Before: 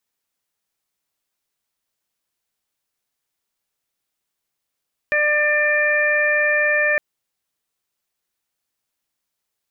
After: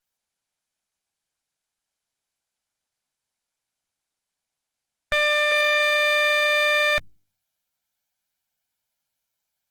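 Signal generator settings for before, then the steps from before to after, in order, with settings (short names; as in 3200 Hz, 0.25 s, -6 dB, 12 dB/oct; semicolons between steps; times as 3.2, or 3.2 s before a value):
steady additive tone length 1.86 s, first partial 596 Hz, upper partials -11.5/4/-2 dB, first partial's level -21 dB
minimum comb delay 1.3 ms; de-hum 99.89 Hz, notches 3; Opus 16 kbps 48000 Hz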